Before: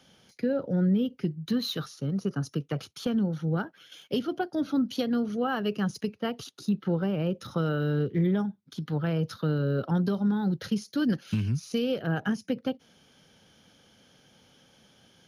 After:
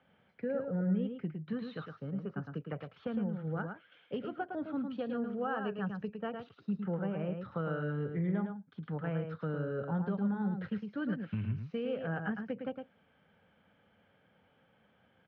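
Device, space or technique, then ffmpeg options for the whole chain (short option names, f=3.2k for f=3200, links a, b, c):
bass cabinet: -filter_complex "[0:a]highpass=70,equalizer=f=140:t=q:w=4:g=-6,equalizer=f=250:t=q:w=4:g=-5,equalizer=f=350:t=q:w=4:g=-7,lowpass=f=2.3k:w=0.5412,lowpass=f=2.3k:w=1.3066,asettb=1/sr,asplit=3[a][b][c];[a]atrim=end=4.894[d];[b]atrim=start=4.89:end=6.37,asetpts=PTS-STARTPTS,afade=t=in:d=0.004:c=qsin,afade=t=out:st=1.476:d=0.004:c=qsin,bandreject=f=2.1k:w=5.9[e];[c]atrim=start=6.366[f];[d][e]acrossfade=d=0.004:c1=hsin:c2=qsin[g];[g][f]acrossfade=d=0.004:c1=qsin:c2=hsin,aecho=1:1:109:0.501,volume=-5.5dB"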